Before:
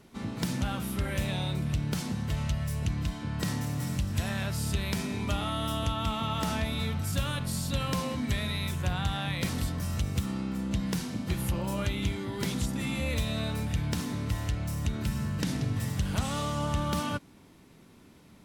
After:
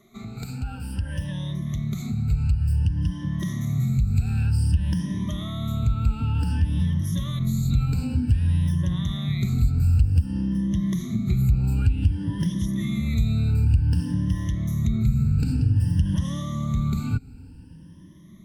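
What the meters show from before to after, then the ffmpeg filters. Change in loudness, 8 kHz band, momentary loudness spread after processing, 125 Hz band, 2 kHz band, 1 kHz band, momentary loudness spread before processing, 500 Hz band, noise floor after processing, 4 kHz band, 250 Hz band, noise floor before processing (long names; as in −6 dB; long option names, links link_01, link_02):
+7.0 dB, −4.5 dB, 8 LU, +9.5 dB, −6.0 dB, −7.0 dB, 2 LU, −7.5 dB, −44 dBFS, −5.0 dB, +5.5 dB, −55 dBFS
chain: -af "afftfilt=real='re*pow(10,21/40*sin(2*PI*(1.2*log(max(b,1)*sr/1024/100)/log(2)-(0.54)*(pts-256)/sr)))':imag='im*pow(10,21/40*sin(2*PI*(1.2*log(max(b,1)*sr/1024/100)/log(2)-(0.54)*(pts-256)/sr)))':win_size=1024:overlap=0.75,acompressor=threshold=-27dB:ratio=6,asubboost=boost=10:cutoff=190,volume=-6dB"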